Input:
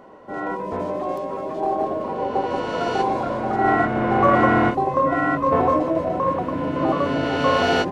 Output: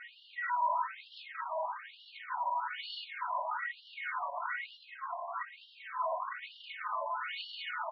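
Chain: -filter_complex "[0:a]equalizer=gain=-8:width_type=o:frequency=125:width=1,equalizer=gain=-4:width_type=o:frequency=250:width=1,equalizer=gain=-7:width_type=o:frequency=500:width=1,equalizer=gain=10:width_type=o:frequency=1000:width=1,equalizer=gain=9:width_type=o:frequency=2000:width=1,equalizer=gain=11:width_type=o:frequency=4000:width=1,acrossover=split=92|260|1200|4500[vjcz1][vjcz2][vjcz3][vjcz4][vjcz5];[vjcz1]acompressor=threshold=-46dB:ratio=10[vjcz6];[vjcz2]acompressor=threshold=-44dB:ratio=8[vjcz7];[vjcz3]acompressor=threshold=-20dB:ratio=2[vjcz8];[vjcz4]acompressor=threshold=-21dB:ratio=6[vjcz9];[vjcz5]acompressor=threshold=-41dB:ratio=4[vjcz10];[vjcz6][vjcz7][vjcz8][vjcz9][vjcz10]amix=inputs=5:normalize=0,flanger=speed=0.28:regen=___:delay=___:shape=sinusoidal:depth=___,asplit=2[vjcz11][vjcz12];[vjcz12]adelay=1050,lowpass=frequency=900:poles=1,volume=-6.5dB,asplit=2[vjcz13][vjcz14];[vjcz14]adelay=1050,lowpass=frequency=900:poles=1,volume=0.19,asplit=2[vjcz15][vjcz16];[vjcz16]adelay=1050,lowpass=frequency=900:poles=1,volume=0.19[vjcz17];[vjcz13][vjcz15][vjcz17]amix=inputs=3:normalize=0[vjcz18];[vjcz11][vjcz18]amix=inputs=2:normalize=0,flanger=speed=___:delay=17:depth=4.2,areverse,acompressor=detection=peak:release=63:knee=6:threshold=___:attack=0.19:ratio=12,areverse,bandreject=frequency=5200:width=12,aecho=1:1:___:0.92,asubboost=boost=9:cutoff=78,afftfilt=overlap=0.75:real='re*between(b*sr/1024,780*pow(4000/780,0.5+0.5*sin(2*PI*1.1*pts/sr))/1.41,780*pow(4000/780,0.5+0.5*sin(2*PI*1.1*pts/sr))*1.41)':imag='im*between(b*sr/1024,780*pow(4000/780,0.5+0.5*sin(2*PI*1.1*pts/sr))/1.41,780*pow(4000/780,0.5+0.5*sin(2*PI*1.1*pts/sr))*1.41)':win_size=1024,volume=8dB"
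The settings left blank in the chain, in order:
-79, 7.5, 9.8, 1.7, -37dB, 3.2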